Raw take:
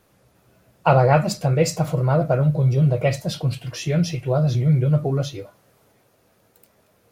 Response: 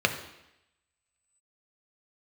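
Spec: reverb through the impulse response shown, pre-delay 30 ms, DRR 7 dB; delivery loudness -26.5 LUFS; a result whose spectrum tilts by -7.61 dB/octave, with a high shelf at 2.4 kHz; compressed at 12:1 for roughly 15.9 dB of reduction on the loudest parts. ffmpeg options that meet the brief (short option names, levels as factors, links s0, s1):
-filter_complex "[0:a]highshelf=f=2400:g=-8,acompressor=threshold=0.0398:ratio=12,asplit=2[s0][s1];[1:a]atrim=start_sample=2205,adelay=30[s2];[s1][s2]afir=irnorm=-1:irlink=0,volume=0.0944[s3];[s0][s3]amix=inputs=2:normalize=0,volume=1.88"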